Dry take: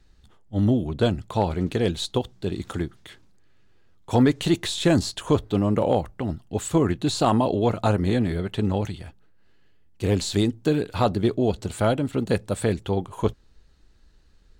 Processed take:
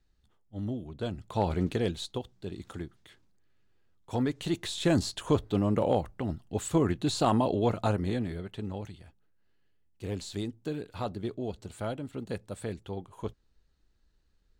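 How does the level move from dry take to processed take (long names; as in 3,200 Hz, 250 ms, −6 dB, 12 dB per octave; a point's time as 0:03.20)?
0:01.00 −14 dB
0:01.55 −2.5 dB
0:02.18 −11 dB
0:04.31 −11 dB
0:05.01 −5 dB
0:07.72 −5 dB
0:08.64 −13 dB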